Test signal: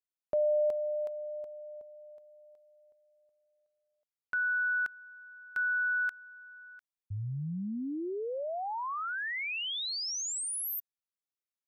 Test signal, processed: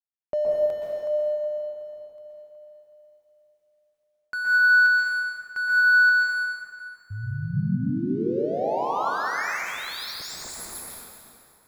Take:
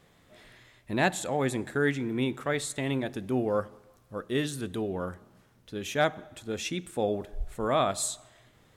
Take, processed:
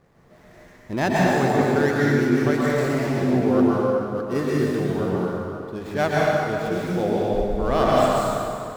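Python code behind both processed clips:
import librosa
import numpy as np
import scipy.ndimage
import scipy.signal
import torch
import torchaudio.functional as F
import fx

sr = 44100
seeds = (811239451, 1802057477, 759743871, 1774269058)

y = scipy.ndimage.median_filter(x, 15, mode='constant')
y = fx.rev_plate(y, sr, seeds[0], rt60_s=2.6, hf_ratio=0.75, predelay_ms=110, drr_db=-6.0)
y = F.gain(torch.from_numpy(y), 3.0).numpy()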